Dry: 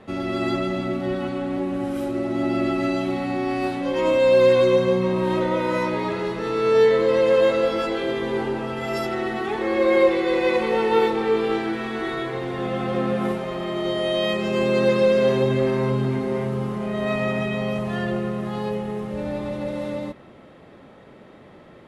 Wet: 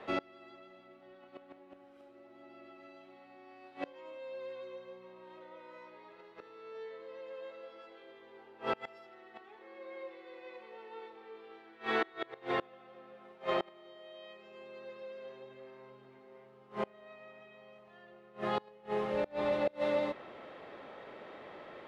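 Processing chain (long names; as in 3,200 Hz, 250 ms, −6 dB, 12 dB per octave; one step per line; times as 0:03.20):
gate with flip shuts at −18 dBFS, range −28 dB
three-way crossover with the lows and the highs turned down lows −16 dB, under 380 Hz, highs −16 dB, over 5,000 Hz
level +1 dB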